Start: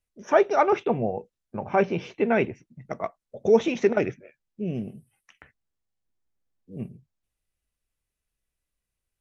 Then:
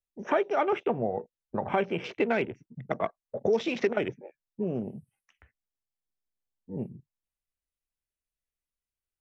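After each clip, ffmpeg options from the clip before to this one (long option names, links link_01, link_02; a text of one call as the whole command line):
ffmpeg -i in.wav -filter_complex "[0:a]acrossover=split=390|2700[link_01][link_02][link_03];[link_01]acompressor=threshold=-38dB:ratio=4[link_04];[link_02]acompressor=threshold=-34dB:ratio=4[link_05];[link_03]acompressor=threshold=-45dB:ratio=4[link_06];[link_04][link_05][link_06]amix=inputs=3:normalize=0,equalizer=frequency=86:width=0.51:gain=-3,afwtdn=0.00398,volume=6dB" out.wav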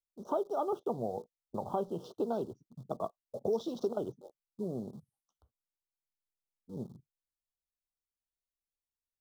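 ffmpeg -i in.wav -filter_complex "[0:a]asplit=2[link_01][link_02];[link_02]acrusher=bits=6:mix=0:aa=0.000001,volume=-11.5dB[link_03];[link_01][link_03]amix=inputs=2:normalize=0,asuperstop=centerf=2100:order=8:qfactor=0.87,volume=-8.5dB" out.wav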